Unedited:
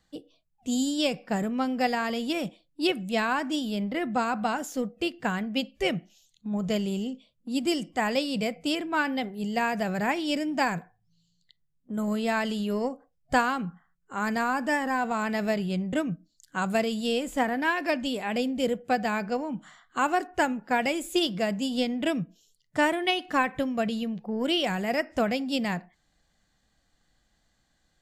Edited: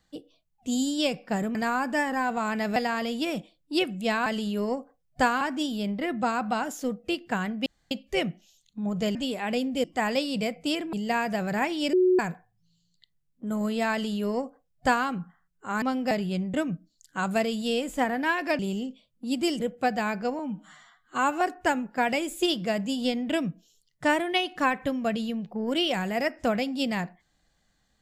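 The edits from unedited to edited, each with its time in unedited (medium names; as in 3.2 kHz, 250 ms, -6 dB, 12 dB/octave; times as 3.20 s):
1.55–1.84 s: swap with 14.29–15.50 s
5.59 s: insert room tone 0.25 s
6.83–7.84 s: swap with 17.98–18.67 s
8.93–9.40 s: delete
10.40–10.66 s: bleep 367 Hz -17 dBFS
12.39–13.54 s: copy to 3.34 s
19.46–20.14 s: stretch 1.5×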